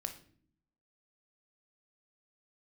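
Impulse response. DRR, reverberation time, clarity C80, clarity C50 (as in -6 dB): 6.0 dB, not exponential, 16.0 dB, 11.0 dB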